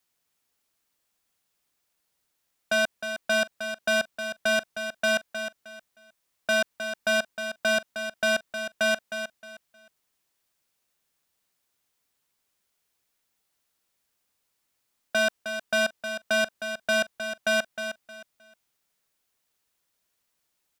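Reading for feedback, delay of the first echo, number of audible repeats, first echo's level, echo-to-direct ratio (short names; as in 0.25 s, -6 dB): 25%, 0.311 s, 3, -9.0 dB, -8.5 dB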